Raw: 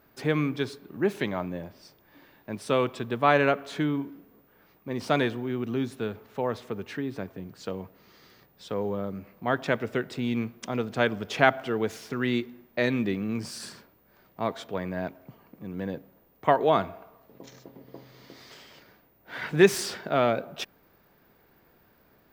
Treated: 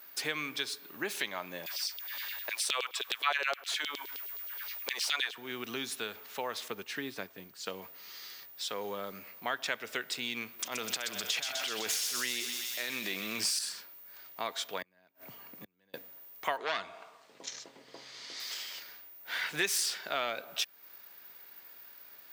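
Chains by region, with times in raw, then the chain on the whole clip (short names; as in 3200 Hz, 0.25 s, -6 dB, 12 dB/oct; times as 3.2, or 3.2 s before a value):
1.66–5.38 LFO high-pass saw down 9.6 Hz 390–4000 Hz + mismatched tape noise reduction encoder only
6.68–7.82 low shelf 410 Hz +5.5 dB + upward expander, over -43 dBFS
10.59–13.59 negative-ratio compressor -28 dBFS, ratio -0.5 + transient shaper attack -11 dB, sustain +6 dB + thin delay 0.126 s, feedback 74%, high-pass 3100 Hz, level -4 dB
14.82–15.94 low shelf 230 Hz +9.5 dB + flipped gate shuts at -27 dBFS, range -36 dB + three-band squash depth 40%
16.57–18.4 LPF 9100 Hz 24 dB/oct + core saturation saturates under 1200 Hz
whole clip: HPF 1500 Hz 6 dB/oct; high shelf 2400 Hz +11.5 dB; compressor 2.5:1, threshold -38 dBFS; gain +4 dB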